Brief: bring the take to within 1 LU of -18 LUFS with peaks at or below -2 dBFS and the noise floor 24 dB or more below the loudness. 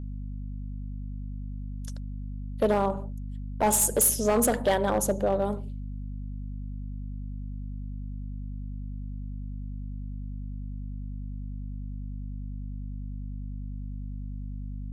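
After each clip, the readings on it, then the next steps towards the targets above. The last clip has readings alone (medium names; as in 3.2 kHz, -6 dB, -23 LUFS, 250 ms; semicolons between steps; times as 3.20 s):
clipped samples 0.3%; clipping level -17.0 dBFS; hum 50 Hz; highest harmonic 250 Hz; hum level -33 dBFS; loudness -31.0 LUFS; peak level -17.0 dBFS; loudness target -18.0 LUFS
-> clip repair -17 dBFS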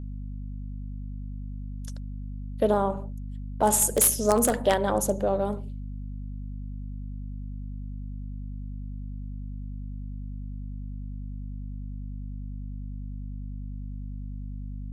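clipped samples 0.0%; hum 50 Hz; highest harmonic 250 Hz; hum level -33 dBFS
-> hum notches 50/100/150/200/250 Hz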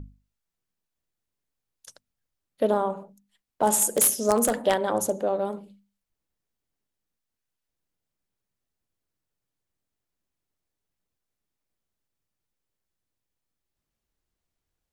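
hum not found; loudness -24.0 LUFS; peak level -7.0 dBFS; loudness target -18.0 LUFS
-> trim +6 dB; peak limiter -2 dBFS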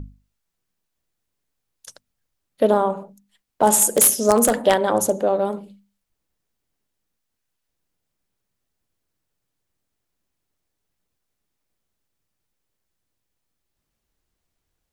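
loudness -18.0 LUFS; peak level -2.0 dBFS; noise floor -79 dBFS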